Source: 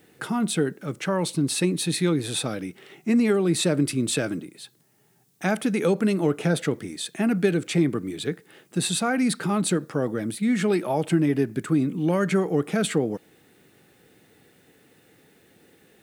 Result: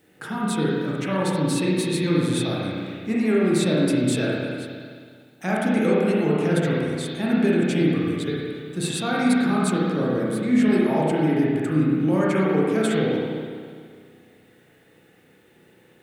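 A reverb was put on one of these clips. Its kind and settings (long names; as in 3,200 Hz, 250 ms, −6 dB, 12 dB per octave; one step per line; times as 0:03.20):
spring reverb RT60 2 s, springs 32/52 ms, chirp 70 ms, DRR −6 dB
level −4.5 dB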